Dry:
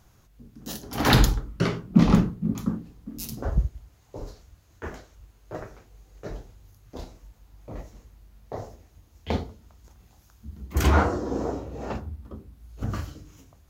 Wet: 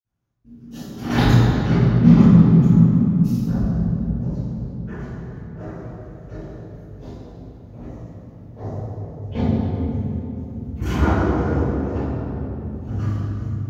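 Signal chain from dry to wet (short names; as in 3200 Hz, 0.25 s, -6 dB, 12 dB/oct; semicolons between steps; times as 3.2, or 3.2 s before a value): gate with hold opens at -44 dBFS; 8.56–9.36 low shelf 360 Hz +8.5 dB; reverb RT60 3.5 s, pre-delay 47 ms, DRR -60 dB; gain -3 dB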